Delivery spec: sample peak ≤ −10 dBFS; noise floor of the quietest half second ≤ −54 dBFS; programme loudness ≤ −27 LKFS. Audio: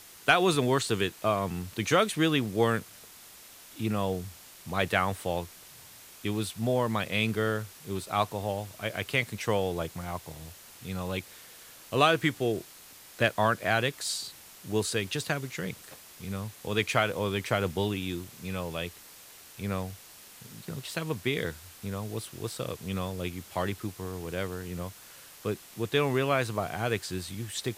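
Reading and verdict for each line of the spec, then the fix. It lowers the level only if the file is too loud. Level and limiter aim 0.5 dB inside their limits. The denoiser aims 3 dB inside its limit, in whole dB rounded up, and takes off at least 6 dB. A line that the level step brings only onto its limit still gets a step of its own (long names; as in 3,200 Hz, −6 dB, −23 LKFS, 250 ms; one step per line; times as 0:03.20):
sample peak −7.5 dBFS: out of spec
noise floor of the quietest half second −51 dBFS: out of spec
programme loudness −30.0 LKFS: in spec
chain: broadband denoise 6 dB, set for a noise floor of −51 dBFS
brickwall limiter −10.5 dBFS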